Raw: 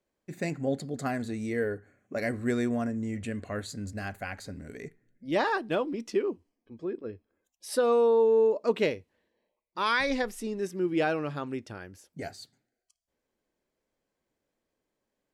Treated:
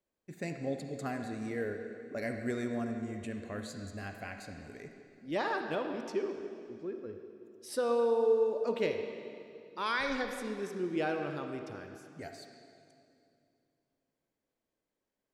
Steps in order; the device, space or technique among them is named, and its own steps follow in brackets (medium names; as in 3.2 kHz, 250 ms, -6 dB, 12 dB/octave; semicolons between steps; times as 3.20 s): filtered reverb send (on a send: high-pass 210 Hz 12 dB/octave + low-pass 6.2 kHz 12 dB/octave + reverberation RT60 2.5 s, pre-delay 44 ms, DRR 5 dB); on the sum: trim -6.5 dB